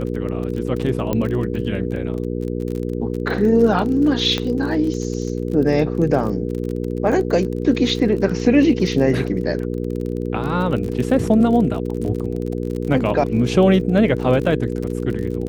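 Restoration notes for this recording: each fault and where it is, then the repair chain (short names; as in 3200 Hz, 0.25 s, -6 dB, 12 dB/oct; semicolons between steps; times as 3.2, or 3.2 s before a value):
crackle 32/s -26 dBFS
hum 60 Hz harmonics 8 -24 dBFS
1.13 pop -9 dBFS
4.38 pop -9 dBFS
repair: de-click; de-hum 60 Hz, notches 8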